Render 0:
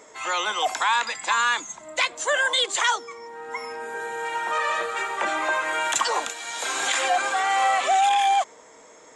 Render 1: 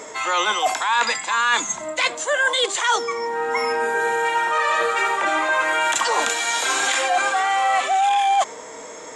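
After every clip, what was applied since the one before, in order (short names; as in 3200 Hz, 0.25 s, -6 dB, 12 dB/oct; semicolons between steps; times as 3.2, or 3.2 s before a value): harmonic-percussive split harmonic +7 dB; reverse; compressor, threshold -25 dBFS, peak gain reduction 14 dB; reverse; gain +7.5 dB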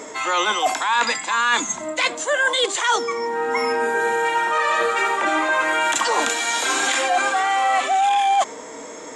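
bell 270 Hz +7.5 dB 0.74 oct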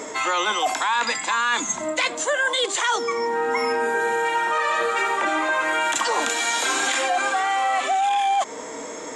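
compressor 3:1, threshold -22 dBFS, peak gain reduction 6.5 dB; gain +2 dB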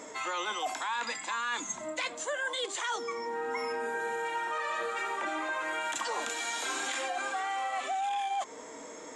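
flange 0.5 Hz, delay 1.1 ms, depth 2.7 ms, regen -85%; gain -7 dB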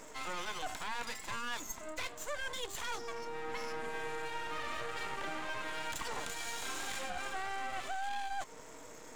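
half-wave rectifier; gain -2 dB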